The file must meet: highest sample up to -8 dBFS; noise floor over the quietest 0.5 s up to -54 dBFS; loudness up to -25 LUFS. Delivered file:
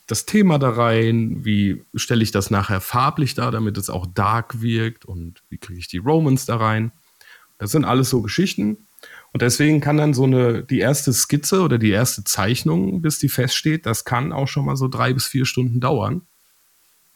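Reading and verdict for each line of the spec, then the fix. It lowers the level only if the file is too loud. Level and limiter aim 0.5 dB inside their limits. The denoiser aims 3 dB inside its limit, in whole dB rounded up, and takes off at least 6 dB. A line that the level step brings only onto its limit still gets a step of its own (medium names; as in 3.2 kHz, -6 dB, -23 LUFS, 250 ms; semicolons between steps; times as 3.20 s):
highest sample -6.0 dBFS: fail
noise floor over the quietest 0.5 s -58 dBFS: pass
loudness -19.0 LUFS: fail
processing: trim -6.5 dB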